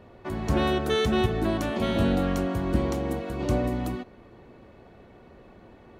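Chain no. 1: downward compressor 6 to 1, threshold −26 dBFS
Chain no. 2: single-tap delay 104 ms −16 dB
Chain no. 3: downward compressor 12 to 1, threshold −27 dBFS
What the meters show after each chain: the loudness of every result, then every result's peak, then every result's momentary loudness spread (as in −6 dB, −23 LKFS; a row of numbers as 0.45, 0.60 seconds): −31.0, −26.5, −32.5 LKFS; −17.0, −11.0, −18.0 dBFS; 7, 9, 20 LU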